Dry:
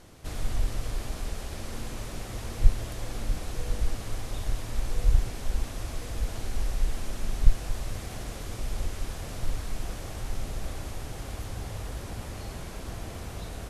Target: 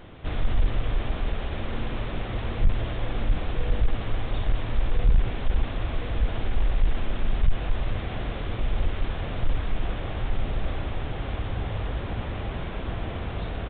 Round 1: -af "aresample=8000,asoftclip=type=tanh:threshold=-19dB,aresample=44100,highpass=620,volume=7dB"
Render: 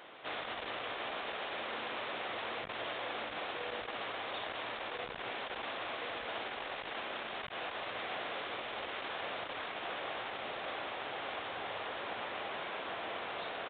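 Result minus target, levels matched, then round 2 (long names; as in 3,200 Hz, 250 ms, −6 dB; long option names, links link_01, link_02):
500 Hz band +4.5 dB
-af "aresample=8000,asoftclip=type=tanh:threshold=-19dB,aresample=44100,volume=7dB"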